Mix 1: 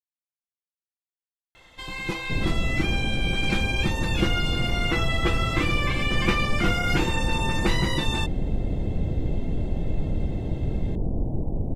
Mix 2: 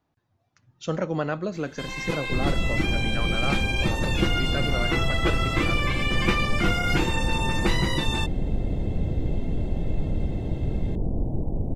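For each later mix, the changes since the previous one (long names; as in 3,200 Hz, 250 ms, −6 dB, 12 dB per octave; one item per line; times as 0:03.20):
speech: unmuted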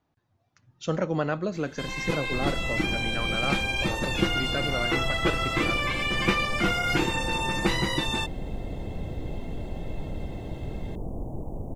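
second sound: add tilt shelving filter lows −8.5 dB, about 810 Hz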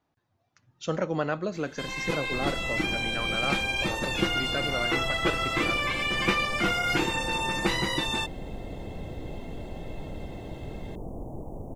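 master: add low-shelf EQ 220 Hz −5.5 dB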